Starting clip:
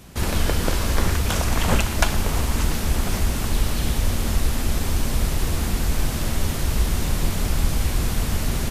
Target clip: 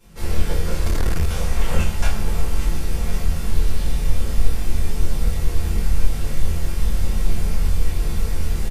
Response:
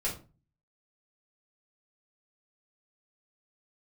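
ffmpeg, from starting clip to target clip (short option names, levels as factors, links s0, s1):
-filter_complex "[0:a]asplit=2[s0][s1];[s1]adelay=23,volume=0.794[s2];[s0][s2]amix=inputs=2:normalize=0[s3];[1:a]atrim=start_sample=2205[s4];[s3][s4]afir=irnorm=-1:irlink=0,asettb=1/sr,asplit=3[s5][s6][s7];[s5]atrim=end=0.854[s8];[s6]atrim=start=0.85:end=1.27,asetpts=PTS-STARTPTS,afade=t=in:d=0.004:c=qsin,afade=t=out:st=0.416:d=0.004:c=qsin,acontrast=52[s9];[s7]atrim=start=1.266[s10];[s8][s9]acrossfade=d=0.004:c1=hsin:c2=qsin[s11];[s11][s10]acrossfade=d=0.004:c1=qsin:c2=hsin,volume=0.251"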